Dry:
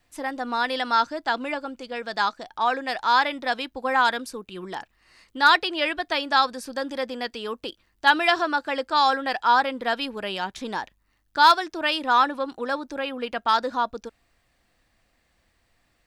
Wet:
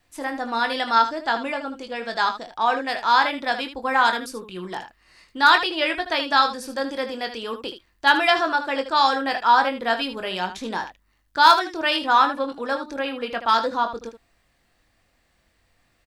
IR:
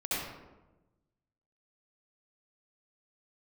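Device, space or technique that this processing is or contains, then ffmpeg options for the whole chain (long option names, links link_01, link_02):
slapback doubling: -filter_complex "[0:a]asplit=3[link_01][link_02][link_03];[link_02]adelay=22,volume=-7.5dB[link_04];[link_03]adelay=77,volume=-10.5dB[link_05];[link_01][link_04][link_05]amix=inputs=3:normalize=0,volume=1dB"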